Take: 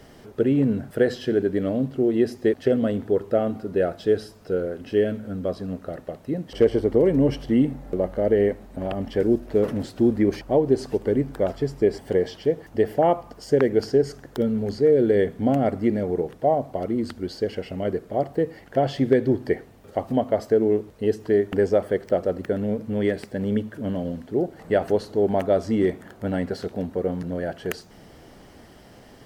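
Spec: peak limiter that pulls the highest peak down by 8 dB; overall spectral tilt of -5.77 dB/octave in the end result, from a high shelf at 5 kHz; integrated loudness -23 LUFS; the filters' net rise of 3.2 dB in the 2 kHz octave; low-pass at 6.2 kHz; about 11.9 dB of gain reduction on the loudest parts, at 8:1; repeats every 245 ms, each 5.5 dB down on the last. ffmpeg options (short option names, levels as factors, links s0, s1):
-af "lowpass=6200,equalizer=f=2000:t=o:g=5,highshelf=f=5000:g=-9,acompressor=threshold=0.0501:ratio=8,alimiter=limit=0.0794:level=0:latency=1,aecho=1:1:245|490|735|980|1225|1470|1715:0.531|0.281|0.149|0.079|0.0419|0.0222|0.0118,volume=2.82"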